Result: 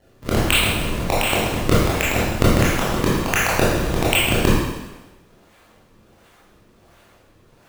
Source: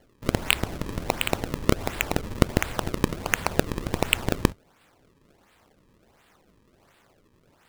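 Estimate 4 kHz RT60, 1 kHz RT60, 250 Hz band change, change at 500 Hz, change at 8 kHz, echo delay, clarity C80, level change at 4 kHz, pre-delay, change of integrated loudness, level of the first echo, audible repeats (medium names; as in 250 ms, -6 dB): 1.1 s, 1.1 s, +7.5 dB, +8.0 dB, +8.0 dB, no echo, 1.5 dB, +8.0 dB, 19 ms, +8.0 dB, no echo, no echo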